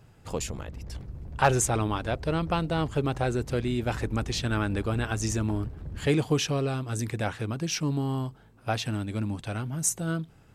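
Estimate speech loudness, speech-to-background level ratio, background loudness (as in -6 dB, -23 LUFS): -29.0 LUFS, 12.5 dB, -41.5 LUFS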